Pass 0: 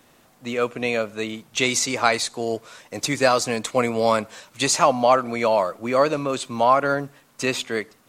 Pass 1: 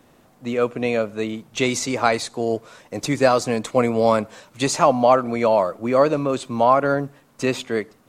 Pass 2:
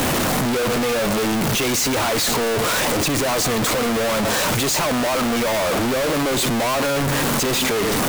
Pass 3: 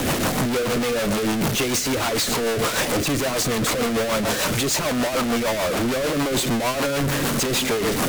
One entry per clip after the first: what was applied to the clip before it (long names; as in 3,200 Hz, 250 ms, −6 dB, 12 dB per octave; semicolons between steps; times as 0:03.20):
tilt shelving filter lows +4.5 dB, about 1,100 Hz
sign of each sample alone; level +1 dB
rotating-speaker cabinet horn 6.7 Hz